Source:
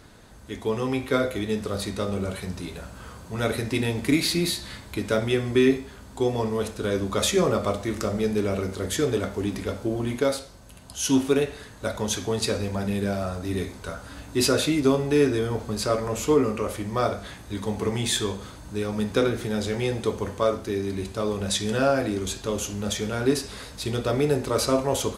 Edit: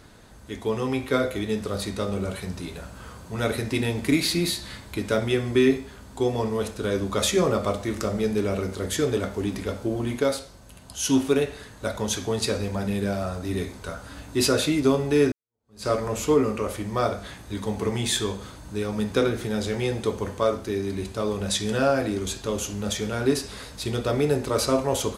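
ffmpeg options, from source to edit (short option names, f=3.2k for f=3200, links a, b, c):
-filter_complex "[0:a]asplit=2[a][b];[a]atrim=end=15.32,asetpts=PTS-STARTPTS,afade=t=out:st=15.316:d=0.004:c=hsin[c];[b]atrim=start=15.32,asetpts=PTS-STARTPTS,afade=t=in:d=0.55:c=exp[d];[c][d]concat=n=2:v=0:a=1"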